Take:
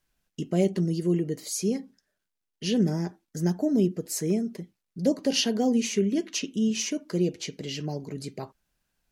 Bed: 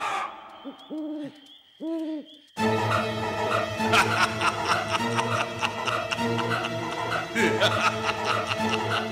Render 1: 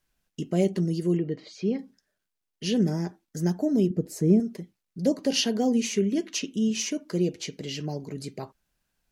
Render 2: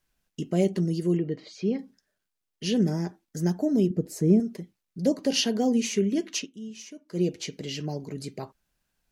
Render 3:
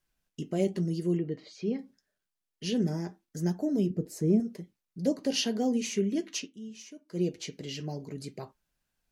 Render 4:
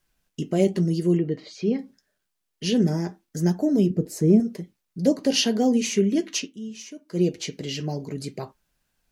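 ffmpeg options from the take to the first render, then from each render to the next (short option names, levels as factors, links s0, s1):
-filter_complex "[0:a]asettb=1/sr,asplit=3[s0][s1][s2];[s0]atrim=end=1.174[s3];[s1]atrim=start=1.17:end=1.79,asetpts=PTS-STARTPTS,afade=t=in:d=0.004:c=qsin,afade=t=out:st=0.616:d=0.004:c=qsin,lowpass=f=3800:w=0.5412,lowpass=f=3800:w=1.3066[s4];[s2]atrim=start=1.786[s5];[s3][s4]acrossfade=d=0.004:c1=hsin:c2=qsin[s6];[s6][s5]acrossfade=d=0.004:c1=qsin:c2=hsin,asettb=1/sr,asplit=3[s7][s8][s9];[s7]atrim=end=3.904[s10];[s8]atrim=start=3.9:end=4.4,asetpts=PTS-STARTPTS,afade=t=in:d=0.004:c=qsin,afade=t=out:st=0.496:d=0.004:c=qsin,tiltshelf=f=650:g=9[s11];[s9]atrim=start=4.396[s12];[s10][s11]acrossfade=d=0.004:c1=hsin:c2=qsin[s13];[s13][s12]acrossfade=d=0.004:c1=qsin:c2=hsin"
-filter_complex "[0:a]asplit=3[s0][s1][s2];[s0]atrim=end=6.53,asetpts=PTS-STARTPTS,afade=t=out:st=6.39:d=0.14:c=qua:silence=0.199526[s3];[s1]atrim=start=6.53:end=7.06,asetpts=PTS-STARTPTS,volume=0.2[s4];[s2]atrim=start=7.06,asetpts=PTS-STARTPTS,afade=t=in:d=0.14:c=qua:silence=0.199526[s5];[s3][s4][s5]concat=n=3:v=0:a=1"
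-af "flanger=delay=5.5:depth=3.1:regen=-71:speed=0.83:shape=triangular"
-af "volume=2.37"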